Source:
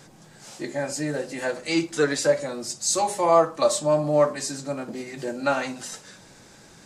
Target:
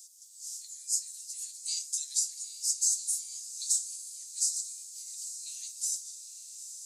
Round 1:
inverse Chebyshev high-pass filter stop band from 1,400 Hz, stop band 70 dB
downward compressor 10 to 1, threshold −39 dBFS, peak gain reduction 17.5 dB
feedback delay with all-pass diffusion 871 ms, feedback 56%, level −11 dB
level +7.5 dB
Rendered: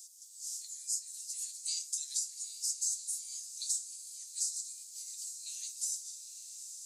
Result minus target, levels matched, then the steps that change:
downward compressor: peak gain reduction +7 dB
change: downward compressor 10 to 1, threshold −31.5 dBFS, peak gain reduction 10.5 dB

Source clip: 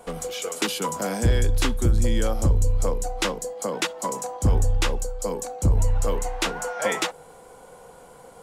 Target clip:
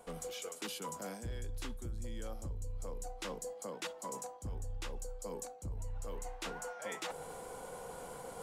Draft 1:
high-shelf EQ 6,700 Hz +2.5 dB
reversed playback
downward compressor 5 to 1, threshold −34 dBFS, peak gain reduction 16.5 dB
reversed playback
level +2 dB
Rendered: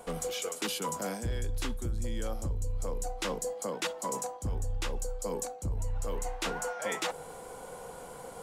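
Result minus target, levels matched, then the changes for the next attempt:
downward compressor: peak gain reduction −8.5 dB
change: downward compressor 5 to 1, threshold −44.5 dBFS, peak gain reduction 25 dB

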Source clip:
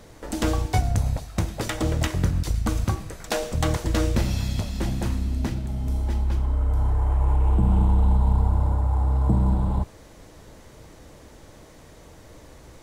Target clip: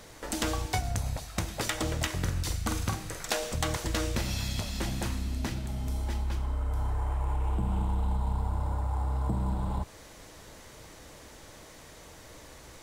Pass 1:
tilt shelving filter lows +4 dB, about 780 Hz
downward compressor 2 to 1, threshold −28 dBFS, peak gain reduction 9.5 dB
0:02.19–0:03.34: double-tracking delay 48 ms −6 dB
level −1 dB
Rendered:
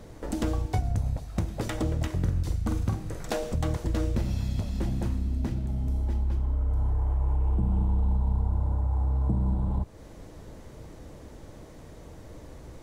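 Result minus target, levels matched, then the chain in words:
1,000 Hz band −7.0 dB
tilt shelving filter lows −4.5 dB, about 780 Hz
downward compressor 2 to 1, threshold −28 dBFS, peak gain reduction 5.5 dB
0:02.19–0:03.34: double-tracking delay 48 ms −6 dB
level −1 dB

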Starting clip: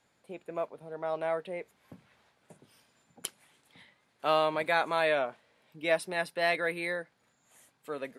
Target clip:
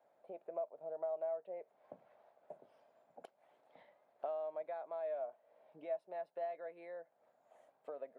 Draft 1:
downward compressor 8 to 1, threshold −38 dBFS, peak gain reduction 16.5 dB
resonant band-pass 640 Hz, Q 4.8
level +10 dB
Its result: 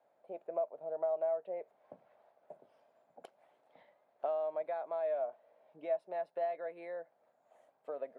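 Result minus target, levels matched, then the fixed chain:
downward compressor: peak gain reduction −5.5 dB
downward compressor 8 to 1, threshold −44.5 dBFS, peak gain reduction 22.5 dB
resonant band-pass 640 Hz, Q 4.8
level +10 dB

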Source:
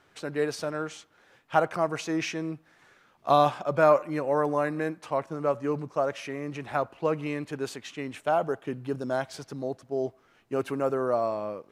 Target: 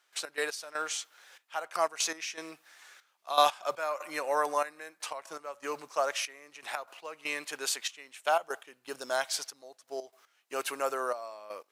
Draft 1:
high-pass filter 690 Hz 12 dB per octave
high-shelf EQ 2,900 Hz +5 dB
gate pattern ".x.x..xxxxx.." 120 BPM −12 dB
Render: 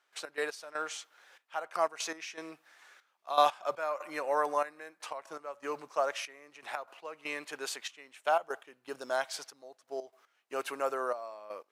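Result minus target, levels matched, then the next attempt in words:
8,000 Hz band −6.0 dB
high-pass filter 690 Hz 12 dB per octave
high-shelf EQ 2,900 Hz +14.5 dB
gate pattern ".x.x..xxxxx.." 120 BPM −12 dB

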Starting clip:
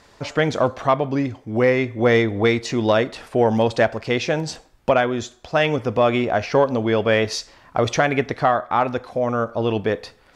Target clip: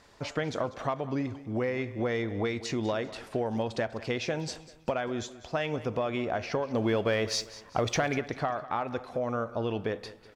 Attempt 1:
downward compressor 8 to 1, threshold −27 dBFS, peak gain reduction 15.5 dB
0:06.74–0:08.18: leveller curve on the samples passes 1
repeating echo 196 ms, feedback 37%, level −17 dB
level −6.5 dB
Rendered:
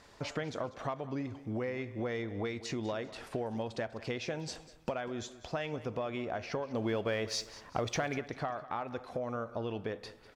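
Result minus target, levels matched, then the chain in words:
downward compressor: peak gain reduction +6 dB
downward compressor 8 to 1, threshold −20 dBFS, peak gain reduction 9 dB
0:06.74–0:08.18: leveller curve on the samples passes 1
repeating echo 196 ms, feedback 37%, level −17 dB
level −6.5 dB

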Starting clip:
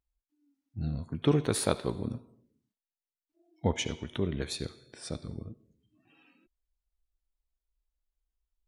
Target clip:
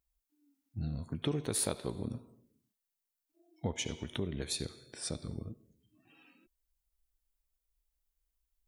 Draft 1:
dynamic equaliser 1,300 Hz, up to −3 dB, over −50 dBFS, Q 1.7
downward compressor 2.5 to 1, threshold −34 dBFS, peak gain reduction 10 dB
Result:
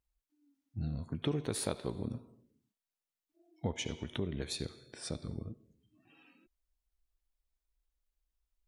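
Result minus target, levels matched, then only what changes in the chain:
8,000 Hz band −4.5 dB
add after downward compressor: high-shelf EQ 7,700 Hz +10.5 dB

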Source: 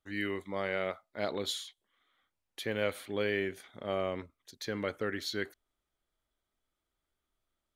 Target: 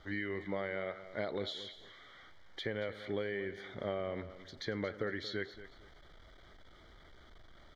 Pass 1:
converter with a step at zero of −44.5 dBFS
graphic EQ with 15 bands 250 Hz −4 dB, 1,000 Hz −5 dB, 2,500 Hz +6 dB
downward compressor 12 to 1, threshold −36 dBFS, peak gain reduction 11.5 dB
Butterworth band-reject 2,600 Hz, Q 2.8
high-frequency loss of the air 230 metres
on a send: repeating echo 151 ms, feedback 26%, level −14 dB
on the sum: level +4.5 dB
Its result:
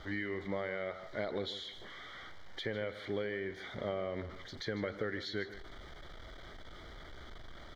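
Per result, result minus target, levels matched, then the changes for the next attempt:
echo 78 ms early; converter with a step at zero: distortion +8 dB
change: repeating echo 229 ms, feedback 26%, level −14 dB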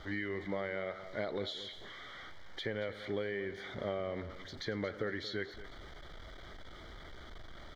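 converter with a step at zero: distortion +8 dB
change: converter with a step at zero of −53 dBFS

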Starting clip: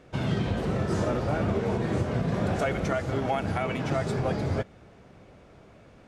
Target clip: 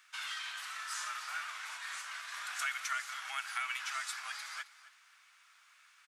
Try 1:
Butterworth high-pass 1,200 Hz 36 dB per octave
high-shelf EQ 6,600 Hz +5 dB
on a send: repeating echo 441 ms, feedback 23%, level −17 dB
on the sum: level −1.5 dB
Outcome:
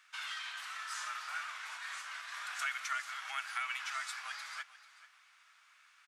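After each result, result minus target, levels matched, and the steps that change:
echo 175 ms late; 8,000 Hz band −3.0 dB
change: repeating echo 266 ms, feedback 23%, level −17 dB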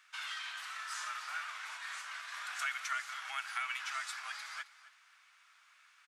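8,000 Hz band −3.0 dB
change: high-shelf EQ 6,600 Hz +12 dB

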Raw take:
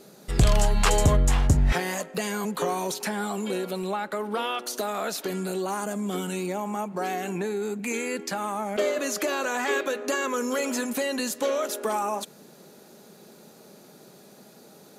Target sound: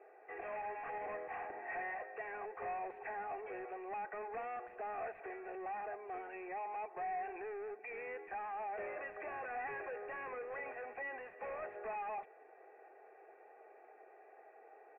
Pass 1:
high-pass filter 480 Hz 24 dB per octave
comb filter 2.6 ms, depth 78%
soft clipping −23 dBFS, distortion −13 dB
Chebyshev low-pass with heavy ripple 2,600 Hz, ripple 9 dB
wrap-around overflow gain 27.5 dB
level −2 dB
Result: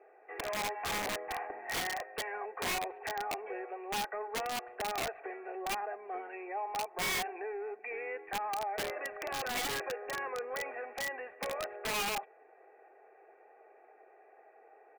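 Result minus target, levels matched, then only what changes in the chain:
soft clipping: distortion −8 dB
change: soft clipping −34.5 dBFS, distortion −5 dB

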